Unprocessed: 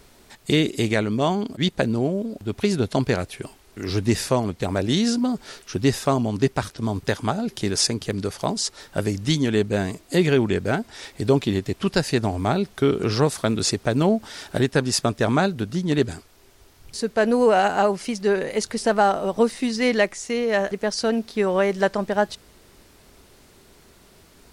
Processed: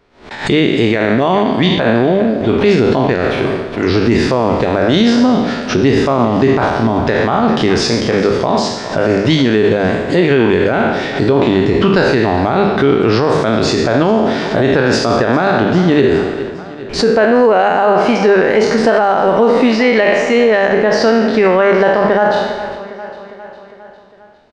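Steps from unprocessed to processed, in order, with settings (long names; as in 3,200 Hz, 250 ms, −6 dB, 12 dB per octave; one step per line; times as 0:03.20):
peak hold with a decay on every bin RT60 0.86 s
spectral tilt +2.5 dB per octave
in parallel at +2 dB: downward compressor, threshold −32 dBFS, peak gain reduction 22 dB
on the sum: noise gate with hold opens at −26 dBFS
head-to-tape spacing loss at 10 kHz 43 dB
mains-hum notches 50/100/150/200 Hz
on a send: repeating echo 405 ms, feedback 59%, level −18 dB
on the sum: boost into a limiter +17 dB
background raised ahead of every attack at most 130 dB per second
level −1.5 dB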